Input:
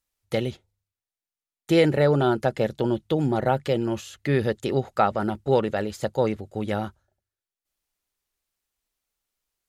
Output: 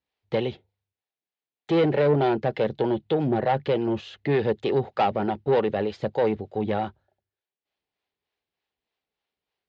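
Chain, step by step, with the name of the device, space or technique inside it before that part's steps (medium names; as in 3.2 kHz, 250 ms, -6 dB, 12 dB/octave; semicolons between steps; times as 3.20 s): guitar amplifier with harmonic tremolo (harmonic tremolo 3.3 Hz, depth 50%, crossover 440 Hz; saturation -22 dBFS, distortion -10 dB; cabinet simulation 93–4000 Hz, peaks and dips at 430 Hz +5 dB, 780 Hz +4 dB, 1.3 kHz -5 dB); trim +4 dB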